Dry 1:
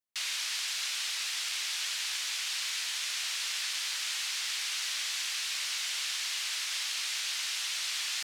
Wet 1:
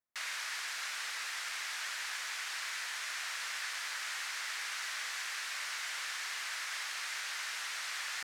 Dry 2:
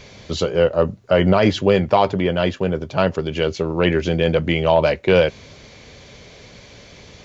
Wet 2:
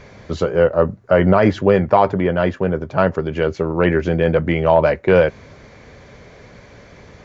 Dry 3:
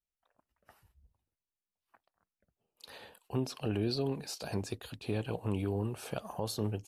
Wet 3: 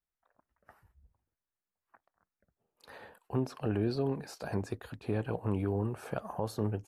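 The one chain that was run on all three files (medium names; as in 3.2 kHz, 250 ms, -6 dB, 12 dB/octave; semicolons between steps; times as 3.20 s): resonant high shelf 2.3 kHz -8.5 dB, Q 1.5; trim +1.5 dB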